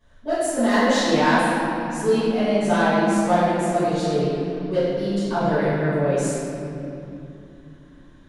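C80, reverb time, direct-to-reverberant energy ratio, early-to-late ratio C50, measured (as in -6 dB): -2.0 dB, 2.9 s, -16.5 dB, -4.5 dB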